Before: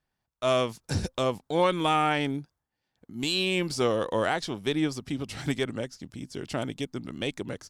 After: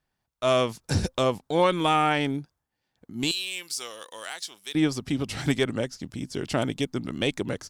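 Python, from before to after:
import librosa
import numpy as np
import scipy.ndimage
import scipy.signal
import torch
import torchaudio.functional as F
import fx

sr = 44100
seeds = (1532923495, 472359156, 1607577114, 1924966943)

p1 = fx.differentiator(x, sr, at=(3.31, 4.75))
p2 = fx.rider(p1, sr, range_db=3, speed_s=0.5)
p3 = p1 + (p2 * librosa.db_to_amplitude(1.0))
y = p3 * librosa.db_to_amplitude(-3.0)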